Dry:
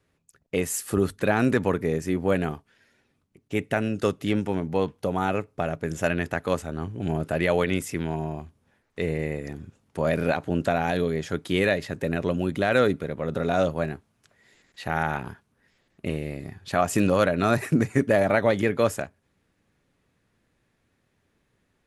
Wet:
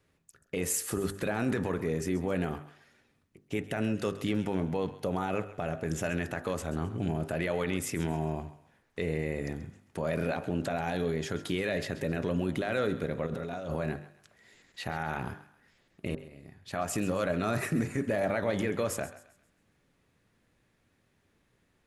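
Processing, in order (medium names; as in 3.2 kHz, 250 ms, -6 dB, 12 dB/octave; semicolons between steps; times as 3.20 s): 16.15–17.43 s: fade in; peak limiter -19.5 dBFS, peak gain reduction 11 dB; de-hum 49.55 Hz, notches 38; 13.26–13.76 s: compressor with a negative ratio -36 dBFS, ratio -1; thinning echo 133 ms, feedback 38%, high-pass 650 Hz, level -14.5 dB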